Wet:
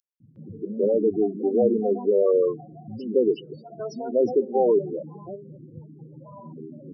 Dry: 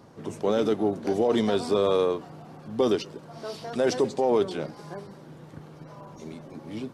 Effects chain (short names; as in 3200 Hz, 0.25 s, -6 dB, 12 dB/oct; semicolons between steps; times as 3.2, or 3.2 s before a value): loudest bins only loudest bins 8; three bands offset in time highs, lows, mids 0.2/0.36 s, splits 230/4300 Hz; gain +4.5 dB